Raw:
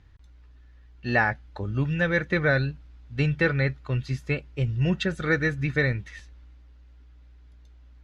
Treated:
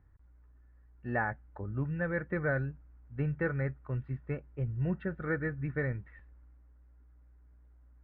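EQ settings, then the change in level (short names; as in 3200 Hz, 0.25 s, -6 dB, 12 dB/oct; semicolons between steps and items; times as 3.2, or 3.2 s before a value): LPF 1700 Hz 24 dB/oct; -8.0 dB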